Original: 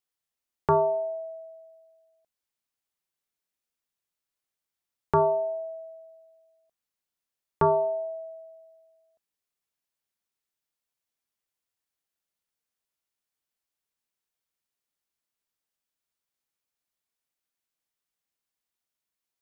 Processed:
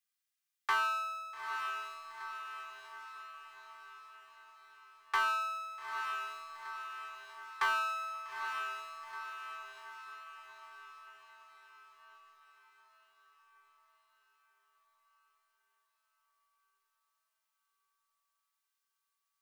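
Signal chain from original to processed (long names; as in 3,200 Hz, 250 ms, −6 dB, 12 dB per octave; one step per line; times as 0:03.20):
lower of the sound and its delayed copy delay 2.5 ms
high-pass filter 1,200 Hz 24 dB per octave
in parallel at −12 dB: floating-point word with a short mantissa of 2 bits
on the sum: soft clipping −20.5 dBFS, distortion −20 dB
feedback delay with all-pass diffusion 873 ms, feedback 57%, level −5.5 dB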